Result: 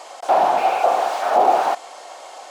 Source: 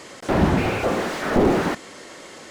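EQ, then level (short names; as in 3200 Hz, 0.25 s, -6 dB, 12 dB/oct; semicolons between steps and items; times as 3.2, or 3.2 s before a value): resonant high-pass 740 Hz, resonance Q 5.6; bell 1800 Hz -6 dB 0.57 oct; notch 2000 Hz, Q 25; 0.0 dB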